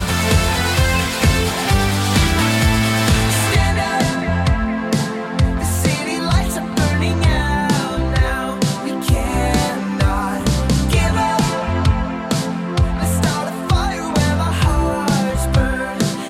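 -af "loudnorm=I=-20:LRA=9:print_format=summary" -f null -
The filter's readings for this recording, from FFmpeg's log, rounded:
Input Integrated:    -17.6 LUFS
Input True Peak:      -4.5 dBTP
Input LRA:             2.6 LU
Input Threshold:     -27.6 LUFS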